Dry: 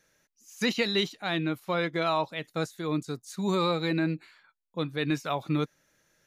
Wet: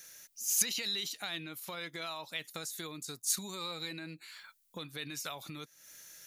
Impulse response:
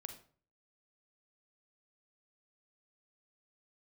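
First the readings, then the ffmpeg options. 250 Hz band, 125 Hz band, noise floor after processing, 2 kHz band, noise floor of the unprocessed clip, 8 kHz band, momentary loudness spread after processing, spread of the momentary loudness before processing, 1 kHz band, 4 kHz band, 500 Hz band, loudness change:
-17.5 dB, -17.0 dB, -72 dBFS, -9.0 dB, -79 dBFS, +13.0 dB, 19 LU, 8 LU, -14.0 dB, -3.5 dB, -17.0 dB, -6.5 dB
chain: -af "alimiter=limit=0.075:level=0:latency=1:release=37,acompressor=threshold=0.00631:ratio=8,crystalizer=i=9.5:c=0"

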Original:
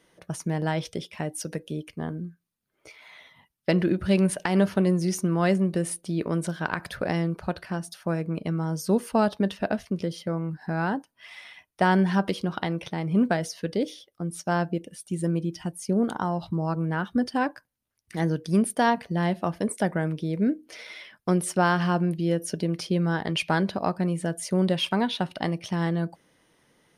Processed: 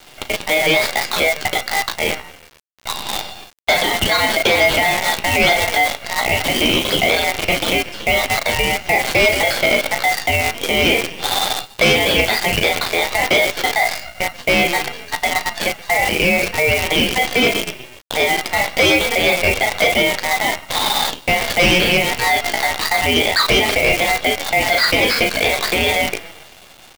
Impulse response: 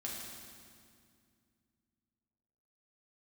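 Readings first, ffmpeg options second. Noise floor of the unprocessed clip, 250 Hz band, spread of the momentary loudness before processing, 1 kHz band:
-73 dBFS, -0.5 dB, 11 LU, +10.5 dB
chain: -filter_complex "[0:a]asplit=5[s0][s1][s2][s3][s4];[s1]adelay=129,afreqshift=33,volume=0.0891[s5];[s2]adelay=258,afreqshift=66,volume=0.0462[s6];[s3]adelay=387,afreqshift=99,volume=0.024[s7];[s4]adelay=516,afreqshift=132,volume=0.0126[s8];[s0][s5][s6][s7][s8]amix=inputs=5:normalize=0,acontrast=47,bandreject=f=970:w=11,highpass=f=580:t=q:w=0.5412,highpass=f=580:t=q:w=1.307,lowpass=f=3000:t=q:w=0.5176,lowpass=f=3000:t=q:w=0.7071,lowpass=f=3000:t=q:w=1.932,afreqshift=150,asplit=2[s9][s10];[s10]adelay=36,volume=0.422[s11];[s9][s11]amix=inputs=2:normalize=0,flanger=delay=8.7:depth=8:regen=21:speed=0.25:shape=sinusoidal,aeval=exprs='val(0)*sin(2*PI*1400*n/s)':c=same,asoftclip=type=tanh:threshold=0.0562,acrusher=bits=8:dc=4:mix=0:aa=0.000001,alimiter=level_in=44.7:limit=0.891:release=50:level=0:latency=1,volume=0.501"

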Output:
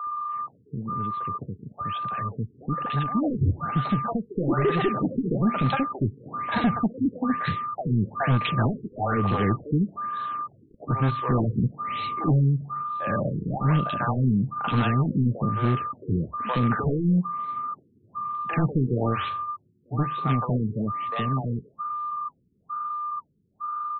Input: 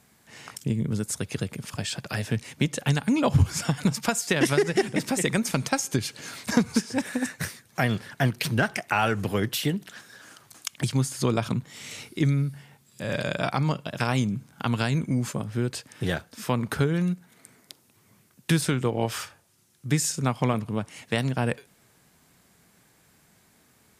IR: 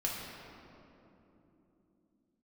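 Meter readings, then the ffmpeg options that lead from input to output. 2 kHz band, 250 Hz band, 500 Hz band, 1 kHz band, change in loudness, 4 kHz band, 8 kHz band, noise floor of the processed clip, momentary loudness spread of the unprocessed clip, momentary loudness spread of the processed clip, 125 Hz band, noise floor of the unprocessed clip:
-4.0 dB, +1.5 dB, -1.5 dB, +6.5 dB, +0.5 dB, -7.0 dB, under -40 dB, -62 dBFS, 10 LU, 10 LU, +2.0 dB, -62 dBFS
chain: -filter_complex "[0:a]aresample=16000,asoftclip=type=tanh:threshold=0.1,aresample=44100,dynaudnorm=f=220:g=31:m=3.55,aeval=exprs='val(0)+0.0708*sin(2*PI*1200*n/s)':c=same,acrossover=split=510|1700[s0][s1][s2];[s2]adelay=40[s3];[s0]adelay=70[s4];[s4][s1][s3]amix=inputs=3:normalize=0,aeval=exprs='0.282*(abs(mod(val(0)/0.282+3,4)-2)-1)':c=same,flanger=delay=3:depth=6.7:regen=-77:speed=1:shape=sinusoidal,afftfilt=real='re*lt(b*sr/1024,450*pow(4300/450,0.5+0.5*sin(2*PI*1.1*pts/sr)))':imag='im*lt(b*sr/1024,450*pow(4300/450,0.5+0.5*sin(2*PI*1.1*pts/sr)))':win_size=1024:overlap=0.75"

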